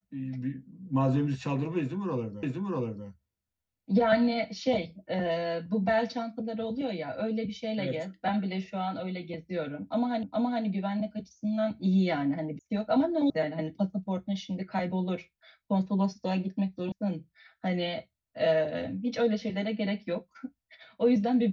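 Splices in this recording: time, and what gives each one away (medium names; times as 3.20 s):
2.43 s: repeat of the last 0.64 s
10.23 s: repeat of the last 0.42 s
12.59 s: sound stops dead
13.30 s: sound stops dead
16.92 s: sound stops dead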